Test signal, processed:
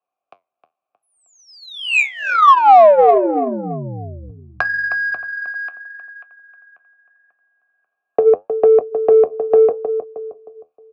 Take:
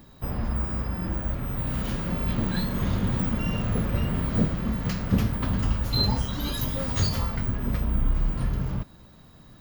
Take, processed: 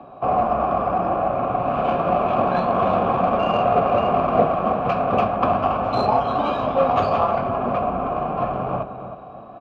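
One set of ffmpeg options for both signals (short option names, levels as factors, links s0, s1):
-filter_complex "[0:a]acrossover=split=120|410[s0][s1][s2];[s0]acompressor=threshold=0.0282:ratio=4[s3];[s1]acompressor=threshold=0.0251:ratio=4[s4];[s2]acompressor=threshold=0.0562:ratio=4[s5];[s3][s4][s5]amix=inputs=3:normalize=0,asplit=3[s6][s7][s8];[s6]bandpass=f=730:t=q:w=8,volume=1[s9];[s7]bandpass=f=1090:t=q:w=8,volume=0.501[s10];[s8]bandpass=f=2440:t=q:w=8,volume=0.355[s11];[s9][s10][s11]amix=inputs=3:normalize=0,asplit=2[s12][s13];[s13]adelay=312,lowpass=f=3200:p=1,volume=0.316,asplit=2[s14][s15];[s15]adelay=312,lowpass=f=3200:p=1,volume=0.38,asplit=2[s16][s17];[s17]adelay=312,lowpass=f=3200:p=1,volume=0.38,asplit=2[s18][s19];[s19]adelay=312,lowpass=f=3200:p=1,volume=0.38[s20];[s14][s16][s18][s20]amix=inputs=4:normalize=0[s21];[s12][s21]amix=inputs=2:normalize=0,flanger=delay=7.2:depth=5.6:regen=-66:speed=0.8:shape=sinusoidal,acrossover=split=280[s22][s23];[s23]adynamicsmooth=sensitivity=5.5:basefreq=1500[s24];[s22][s24]amix=inputs=2:normalize=0,alimiter=level_in=53.1:limit=0.891:release=50:level=0:latency=1,volume=0.891"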